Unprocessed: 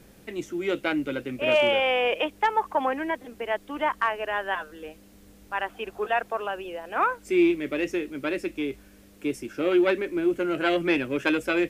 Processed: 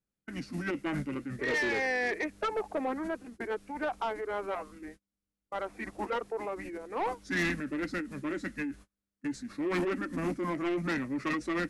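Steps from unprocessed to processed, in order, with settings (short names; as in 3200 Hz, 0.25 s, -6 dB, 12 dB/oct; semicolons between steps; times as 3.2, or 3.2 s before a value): gate -43 dBFS, range -34 dB; formant shift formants -5 st; soft clip -22 dBFS, distortion -11 dB; gain -4 dB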